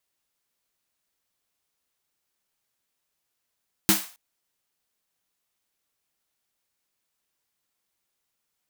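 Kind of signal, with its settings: snare drum length 0.27 s, tones 200 Hz, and 320 Hz, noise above 630 Hz, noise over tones 1 dB, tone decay 0.19 s, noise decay 0.39 s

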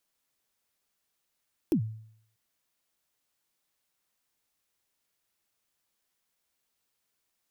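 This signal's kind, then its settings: kick drum length 0.64 s, from 370 Hz, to 110 Hz, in 90 ms, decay 0.65 s, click on, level -19 dB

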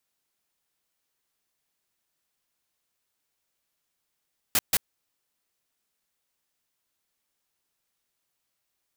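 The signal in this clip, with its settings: noise bursts white, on 0.04 s, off 0.14 s, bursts 2, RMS -21.5 dBFS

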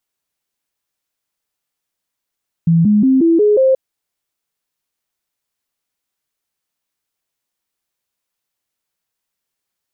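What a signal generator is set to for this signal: stepped sine 166 Hz up, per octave 3, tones 6, 0.18 s, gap 0.00 s -8 dBFS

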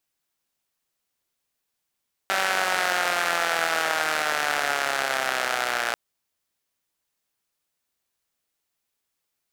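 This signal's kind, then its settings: four-cylinder engine model, changing speed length 3.64 s, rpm 5800, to 3500, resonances 740/1400 Hz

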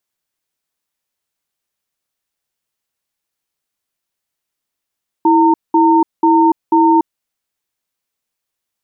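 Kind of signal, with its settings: cadence 327 Hz, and 914 Hz, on 0.29 s, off 0.20 s, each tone -10 dBFS 1.79 s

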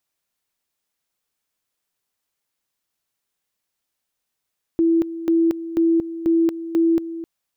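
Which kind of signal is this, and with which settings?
two-level tone 331 Hz -13.5 dBFS, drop 13.5 dB, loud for 0.23 s, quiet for 0.26 s, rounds 5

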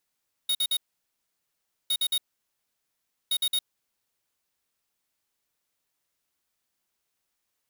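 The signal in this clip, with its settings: beep pattern square 3740 Hz, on 0.06 s, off 0.05 s, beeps 3, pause 1.13 s, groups 3, -25 dBFS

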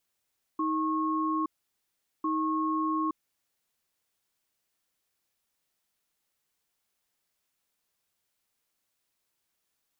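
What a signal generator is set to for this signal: cadence 315 Hz, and 1090 Hz, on 0.87 s, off 0.78 s, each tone -28.5 dBFS 2.83 s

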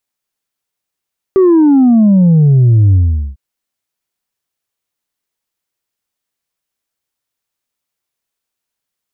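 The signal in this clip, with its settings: sub drop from 390 Hz, over 2.00 s, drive 2 dB, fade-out 0.43 s, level -5 dB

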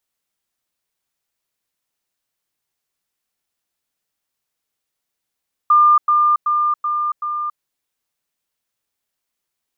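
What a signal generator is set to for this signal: level ladder 1200 Hz -8 dBFS, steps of -3 dB, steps 5, 0.28 s 0.10 s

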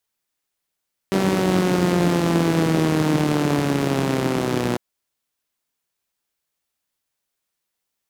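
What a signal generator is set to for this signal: four-cylinder engine model, changing speed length 3.65 s, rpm 5800, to 3600, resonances 180/290 Hz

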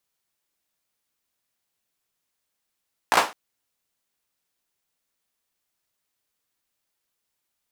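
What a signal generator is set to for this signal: hand clap length 0.21 s, apart 17 ms, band 870 Hz, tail 0.30 s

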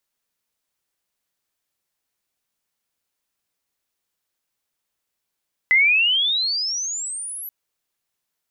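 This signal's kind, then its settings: chirp logarithmic 2000 Hz -> 12000 Hz -11.5 dBFS -> -30 dBFS 1.78 s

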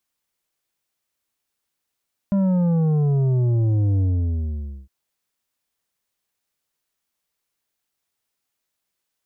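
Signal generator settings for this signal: sub drop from 200 Hz, over 2.56 s, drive 8 dB, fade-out 0.88 s, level -17 dB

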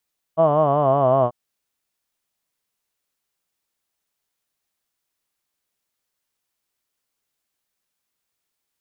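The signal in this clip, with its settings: formant vowel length 0.94 s, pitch 158 Hz, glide -4 st, F1 650 Hz, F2 1100 Hz, F3 3000 Hz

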